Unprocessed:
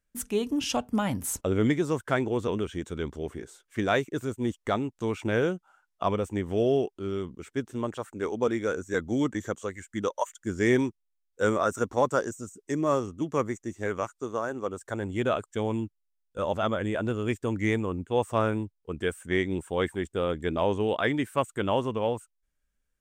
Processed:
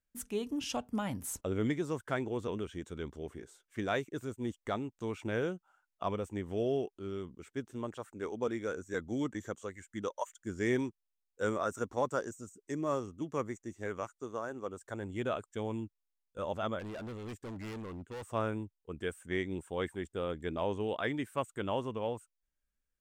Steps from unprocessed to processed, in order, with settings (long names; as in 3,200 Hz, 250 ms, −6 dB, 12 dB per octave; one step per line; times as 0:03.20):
0:16.79–0:18.26: gain into a clipping stage and back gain 32 dB
level −8 dB